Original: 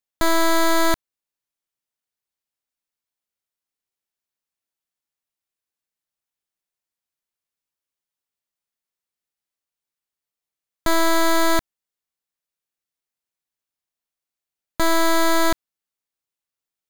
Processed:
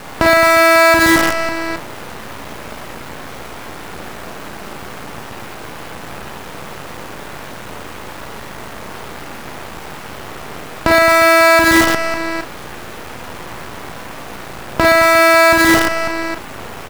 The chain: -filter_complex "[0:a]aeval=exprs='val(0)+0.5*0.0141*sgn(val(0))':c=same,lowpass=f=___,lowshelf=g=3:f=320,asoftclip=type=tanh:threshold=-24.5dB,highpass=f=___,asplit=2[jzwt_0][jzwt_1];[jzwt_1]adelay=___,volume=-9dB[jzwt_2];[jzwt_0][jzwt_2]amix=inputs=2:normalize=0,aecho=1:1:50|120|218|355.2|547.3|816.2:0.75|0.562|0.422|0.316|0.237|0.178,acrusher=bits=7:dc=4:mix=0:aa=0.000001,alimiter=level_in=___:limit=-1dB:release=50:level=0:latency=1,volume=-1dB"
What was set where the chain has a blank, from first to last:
1300, 55, 36, 26dB